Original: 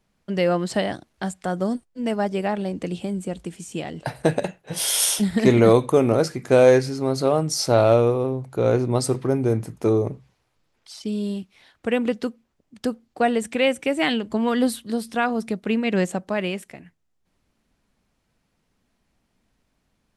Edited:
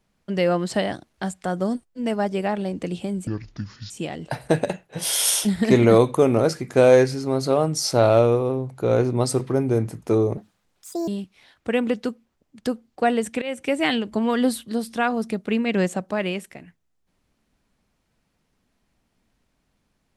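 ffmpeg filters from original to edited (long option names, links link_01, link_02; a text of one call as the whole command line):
ffmpeg -i in.wav -filter_complex "[0:a]asplit=6[link_01][link_02][link_03][link_04][link_05][link_06];[link_01]atrim=end=3.274[link_07];[link_02]atrim=start=3.27:end=3.65,asetpts=PTS-STARTPTS,asetrate=26460,aresample=44100[link_08];[link_03]atrim=start=3.646:end=10.124[link_09];[link_04]atrim=start=10.12:end=11.26,asetpts=PTS-STARTPTS,asetrate=71442,aresample=44100,atrim=end_sample=31033,asetpts=PTS-STARTPTS[link_10];[link_05]atrim=start=11.256:end=13.6,asetpts=PTS-STARTPTS,afade=type=out:start_time=2.34:duration=0.004:curve=hsin:silence=0.112202[link_11];[link_06]atrim=start=13.6,asetpts=PTS-STARTPTS,afade=type=in:duration=0.27:silence=0.112202[link_12];[link_07][link_08]acrossfade=duration=0.004:curve1=hsin:curve2=hsin[link_13];[link_13][link_09]acrossfade=duration=0.004:curve1=hsin:curve2=hsin[link_14];[link_14][link_10]acrossfade=duration=0.004:curve1=hsin:curve2=hsin[link_15];[link_11][link_12]concat=n=2:v=0:a=1[link_16];[link_15][link_16]acrossfade=duration=0.004:curve1=hsin:curve2=hsin" out.wav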